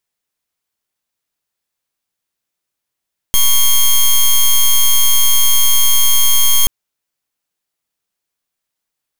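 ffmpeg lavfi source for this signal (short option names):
-f lavfi -i "aevalsrc='0.355*(2*lt(mod(3230*t,1),0.09)-1)':d=3.33:s=44100"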